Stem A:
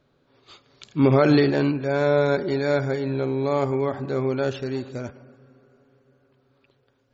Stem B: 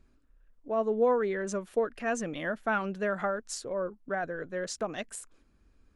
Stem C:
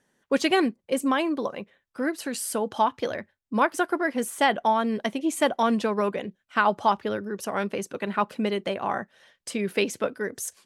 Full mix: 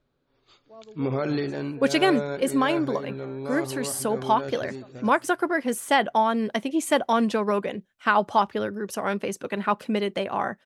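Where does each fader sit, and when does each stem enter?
-9.5 dB, -18.0 dB, +1.0 dB; 0.00 s, 0.00 s, 1.50 s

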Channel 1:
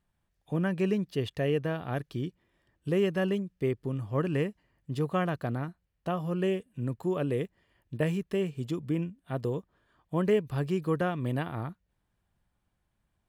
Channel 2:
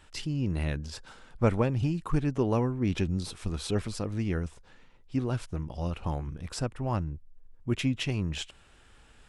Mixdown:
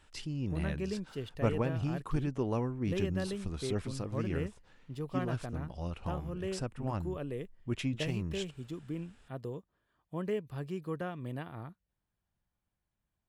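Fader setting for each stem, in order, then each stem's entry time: -9.0 dB, -6.0 dB; 0.00 s, 0.00 s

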